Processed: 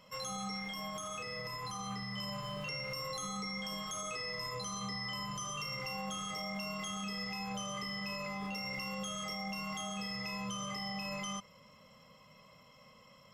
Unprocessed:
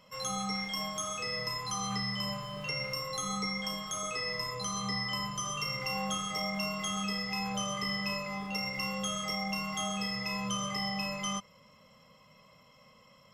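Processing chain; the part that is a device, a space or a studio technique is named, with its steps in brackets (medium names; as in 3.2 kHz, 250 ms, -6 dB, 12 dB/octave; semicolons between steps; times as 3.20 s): clipper into limiter (hard clipper -24 dBFS, distortion -41 dB; peak limiter -31.5 dBFS, peak gain reduction 7.5 dB); 0.59–2.18 s: peaking EQ 5.7 kHz -4.5 dB 1.5 oct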